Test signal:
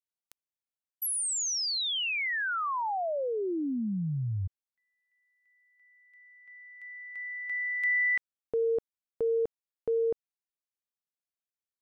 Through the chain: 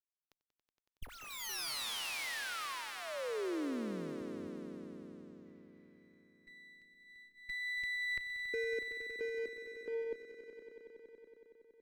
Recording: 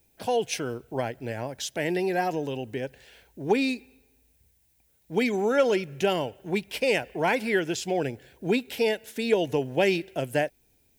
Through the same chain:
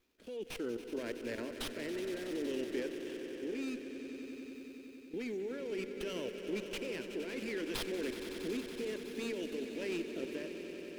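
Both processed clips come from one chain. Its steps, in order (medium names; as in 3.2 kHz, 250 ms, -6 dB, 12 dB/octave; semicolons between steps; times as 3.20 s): high-pass 160 Hz 12 dB/octave; treble shelf 9.6 kHz -4 dB; peak limiter -21 dBFS; level held to a coarse grid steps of 18 dB; rotary cabinet horn 0.6 Hz; static phaser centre 330 Hz, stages 4; on a send: echo with a slow build-up 93 ms, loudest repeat 5, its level -12.5 dB; on the sum: sliding maximum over 5 samples; trim +1.5 dB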